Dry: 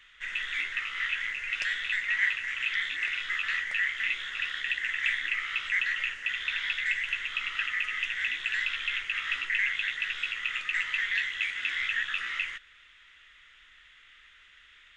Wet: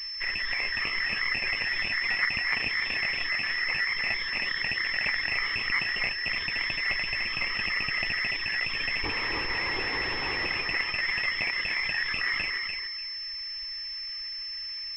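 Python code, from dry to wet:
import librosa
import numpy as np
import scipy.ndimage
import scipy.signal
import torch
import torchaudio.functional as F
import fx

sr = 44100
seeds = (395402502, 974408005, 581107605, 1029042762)

p1 = fx.dereverb_blind(x, sr, rt60_s=1.1)
p2 = fx.over_compress(p1, sr, threshold_db=-38.0, ratio=-0.5)
p3 = p1 + F.gain(torch.from_numpy(p2), 1.5).numpy()
p4 = fx.schmitt(p3, sr, flips_db=-40.0, at=(9.03, 10.46))
p5 = fx.fixed_phaser(p4, sr, hz=960.0, stages=8)
p6 = p5 + fx.echo_feedback(p5, sr, ms=294, feedback_pct=28, wet_db=-4.5, dry=0)
p7 = fx.pwm(p6, sr, carrier_hz=5300.0)
y = F.gain(torch.from_numpy(p7), 3.0).numpy()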